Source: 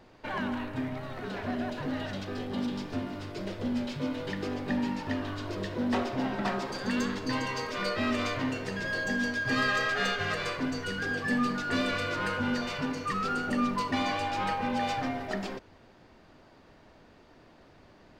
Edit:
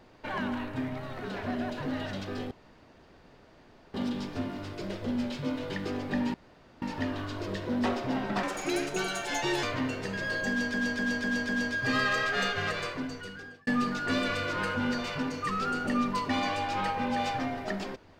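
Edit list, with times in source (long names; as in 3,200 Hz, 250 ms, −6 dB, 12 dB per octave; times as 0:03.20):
0:02.51: splice in room tone 1.43 s
0:04.91: splice in room tone 0.48 s
0:06.52–0:08.26: play speed 145%
0:09.12–0:09.37: repeat, 5 plays
0:10.32–0:11.30: fade out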